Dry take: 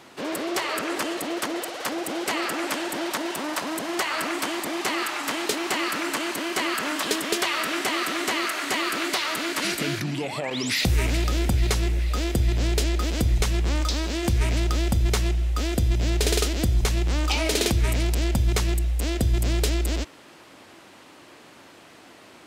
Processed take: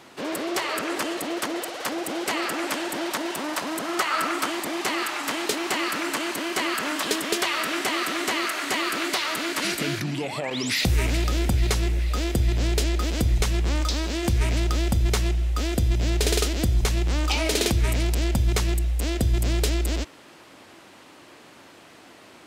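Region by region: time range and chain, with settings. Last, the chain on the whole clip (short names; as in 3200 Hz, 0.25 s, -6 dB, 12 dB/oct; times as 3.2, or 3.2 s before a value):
3.78–4.5 HPF 84 Hz + bell 1300 Hz +8.5 dB 0.24 oct
whole clip: dry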